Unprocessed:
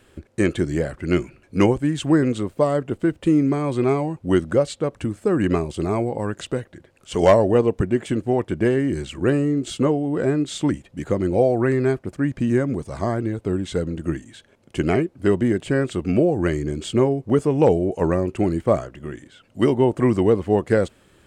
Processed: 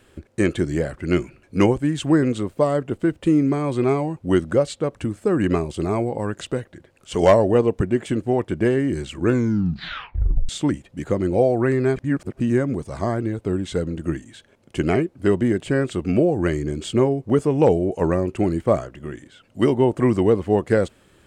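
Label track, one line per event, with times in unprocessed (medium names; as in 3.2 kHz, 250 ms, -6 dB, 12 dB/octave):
9.190000	9.190000	tape stop 1.30 s
11.960000	12.400000	reverse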